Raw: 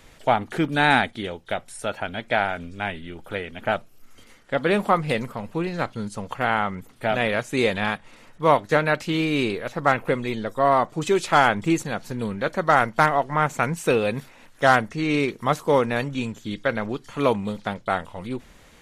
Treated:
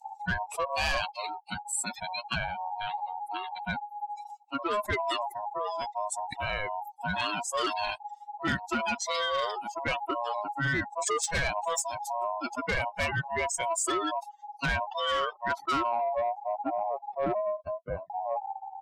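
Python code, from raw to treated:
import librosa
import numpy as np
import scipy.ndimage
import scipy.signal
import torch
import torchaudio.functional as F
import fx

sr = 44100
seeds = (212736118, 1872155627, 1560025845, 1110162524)

y = fx.bin_expand(x, sr, power=3.0)
y = fx.peak_eq(y, sr, hz=330.0, db=-14.5, octaves=0.47, at=(11.65, 12.24))
y = fx.env_lowpass_down(y, sr, base_hz=1000.0, full_db=-21.5, at=(13.92, 14.95))
y = fx.steep_highpass(y, sr, hz=180.0, slope=48, at=(17.34, 18.1))
y = y * np.sin(2.0 * np.pi * 830.0 * np.arange(len(y)) / sr)
y = fx.filter_sweep_lowpass(y, sr, from_hz=7800.0, to_hz=720.0, start_s=14.3, end_s=16.05, q=4.7)
y = 10.0 ** (-25.0 / 20.0) * np.tanh(y / 10.0 ** (-25.0 / 20.0))
y = fx.env_flatten(y, sr, amount_pct=70)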